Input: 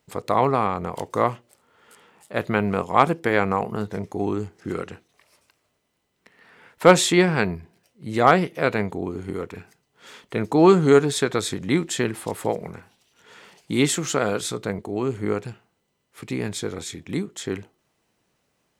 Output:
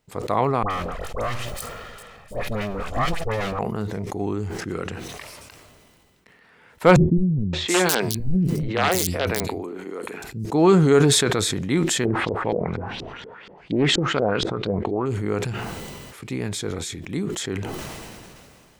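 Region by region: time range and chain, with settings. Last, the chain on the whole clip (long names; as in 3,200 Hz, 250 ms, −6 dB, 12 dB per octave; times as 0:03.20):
0:00.63–0:03.59: lower of the sound and its delayed copy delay 1.6 ms + all-pass dispersion highs, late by 75 ms, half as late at 1,400 Hz + multiband upward and downward compressor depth 40%
0:06.96–0:10.45: wrap-around overflow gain 8 dB + three-band delay without the direct sound lows, mids, highs 570/720 ms, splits 240/4,100 Hz
0:12.05–0:15.06: auto-filter low-pass saw up 4.2 Hz 330–4,900 Hz + highs frequency-modulated by the lows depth 0.21 ms
whole clip: low-shelf EQ 76 Hz +10.5 dB; level that may fall only so fast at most 24 dB per second; level −2.5 dB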